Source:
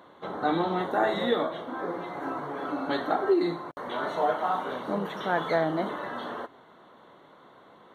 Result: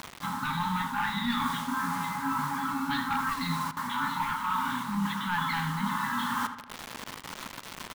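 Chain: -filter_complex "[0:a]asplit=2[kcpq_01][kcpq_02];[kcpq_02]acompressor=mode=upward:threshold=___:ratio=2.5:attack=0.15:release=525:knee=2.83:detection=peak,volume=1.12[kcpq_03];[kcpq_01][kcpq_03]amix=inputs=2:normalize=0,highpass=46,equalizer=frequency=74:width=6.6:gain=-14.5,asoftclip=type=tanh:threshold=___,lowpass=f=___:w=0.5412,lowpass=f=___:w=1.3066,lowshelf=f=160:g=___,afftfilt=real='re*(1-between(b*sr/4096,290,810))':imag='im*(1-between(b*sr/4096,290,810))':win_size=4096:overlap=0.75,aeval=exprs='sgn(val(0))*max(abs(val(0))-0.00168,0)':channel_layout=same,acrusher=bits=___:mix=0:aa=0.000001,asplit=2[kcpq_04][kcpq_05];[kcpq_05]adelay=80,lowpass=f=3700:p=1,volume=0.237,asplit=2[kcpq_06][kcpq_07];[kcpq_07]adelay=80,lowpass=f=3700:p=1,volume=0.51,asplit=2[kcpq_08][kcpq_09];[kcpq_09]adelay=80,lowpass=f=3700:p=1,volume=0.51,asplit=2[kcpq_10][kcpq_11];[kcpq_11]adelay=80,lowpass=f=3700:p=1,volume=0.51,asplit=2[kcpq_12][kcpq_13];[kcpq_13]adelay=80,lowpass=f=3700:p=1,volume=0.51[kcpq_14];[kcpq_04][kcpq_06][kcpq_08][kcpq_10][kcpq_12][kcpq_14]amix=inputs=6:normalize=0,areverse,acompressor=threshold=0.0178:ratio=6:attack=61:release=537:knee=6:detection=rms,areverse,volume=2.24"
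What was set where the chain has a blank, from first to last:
0.0178, 0.188, 5200, 5200, 3, 6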